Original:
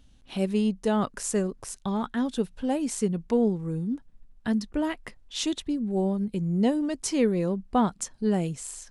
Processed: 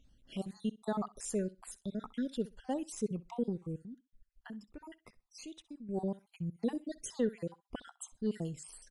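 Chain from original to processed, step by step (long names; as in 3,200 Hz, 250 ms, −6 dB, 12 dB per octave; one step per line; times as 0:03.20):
time-frequency cells dropped at random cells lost 52%
0:03.83–0:05.89: downward compressor 2 to 1, threshold −46 dBFS, peak gain reduction 13 dB
repeating echo 64 ms, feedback 18%, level −20 dB
level −8 dB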